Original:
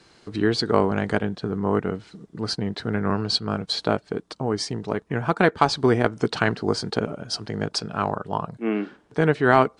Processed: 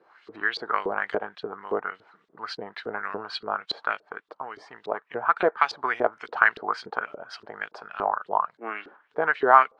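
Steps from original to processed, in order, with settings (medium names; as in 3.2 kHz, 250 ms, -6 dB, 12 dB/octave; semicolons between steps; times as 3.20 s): peaking EQ 1.3 kHz +13.5 dB 2.4 oct; LFO band-pass saw up 3.5 Hz 390–4200 Hz; trim -4 dB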